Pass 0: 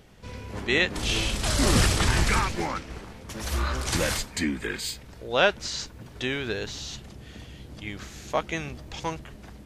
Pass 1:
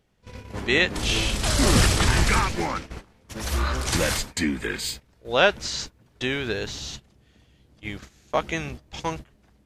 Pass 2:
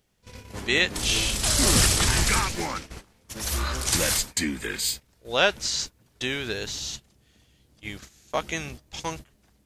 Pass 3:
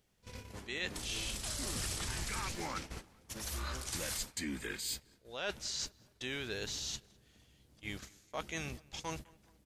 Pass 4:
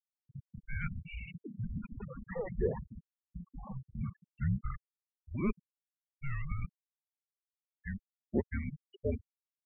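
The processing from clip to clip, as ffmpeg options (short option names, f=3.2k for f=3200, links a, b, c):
-af "agate=range=-17dB:threshold=-37dB:ratio=16:detection=peak,volume=2.5dB"
-af "highshelf=f=4.3k:g=12,volume=-4dB"
-filter_complex "[0:a]areverse,acompressor=threshold=-32dB:ratio=6,areverse,asplit=2[a][b];[b]adelay=207,lowpass=f=2.3k:p=1,volume=-23.5dB,asplit=2[c][d];[d]adelay=207,lowpass=f=2.3k:p=1,volume=0.48,asplit=2[e][f];[f]adelay=207,lowpass=f=2.3k:p=1,volume=0.48[g];[a][c][e][g]amix=inputs=4:normalize=0,volume=-4.5dB"
-af "highpass=f=180:t=q:w=0.5412,highpass=f=180:t=q:w=1.307,lowpass=f=3.1k:t=q:w=0.5176,lowpass=f=3.1k:t=q:w=0.7071,lowpass=f=3.1k:t=q:w=1.932,afreqshift=-390,afftfilt=real='re*gte(hypot(re,im),0.0224)':imag='im*gte(hypot(re,im),0.0224)':win_size=1024:overlap=0.75,lowshelf=f=590:t=q:w=3:g=9"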